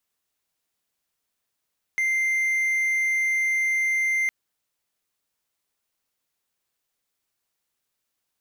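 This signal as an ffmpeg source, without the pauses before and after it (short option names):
-f lavfi -i "aevalsrc='0.119*(1-4*abs(mod(2090*t+0.25,1)-0.5))':d=2.31:s=44100"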